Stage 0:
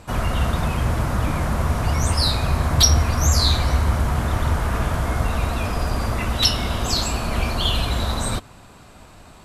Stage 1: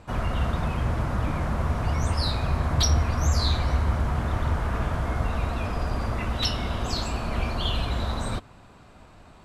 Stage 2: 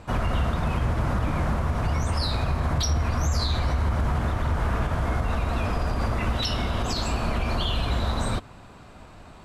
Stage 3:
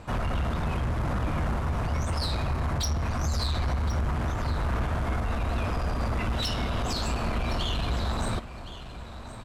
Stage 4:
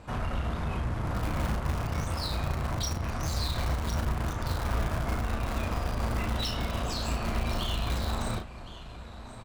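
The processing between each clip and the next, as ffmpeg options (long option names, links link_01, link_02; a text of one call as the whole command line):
ffmpeg -i in.wav -af "aemphasis=mode=reproduction:type=50kf,volume=-4.5dB" out.wav
ffmpeg -i in.wav -af "alimiter=limit=-20dB:level=0:latency=1:release=90,volume=4dB" out.wav
ffmpeg -i in.wav -af "asoftclip=type=tanh:threshold=-23dB,aecho=1:1:1066:0.211" out.wav
ffmpeg -i in.wav -filter_complex "[0:a]asplit=2[link_01][link_02];[link_02]acrusher=bits=3:mix=0:aa=0.000001,volume=-9.5dB[link_03];[link_01][link_03]amix=inputs=2:normalize=0,asplit=2[link_04][link_05];[link_05]adelay=35,volume=-5dB[link_06];[link_04][link_06]amix=inputs=2:normalize=0,volume=-4.5dB" out.wav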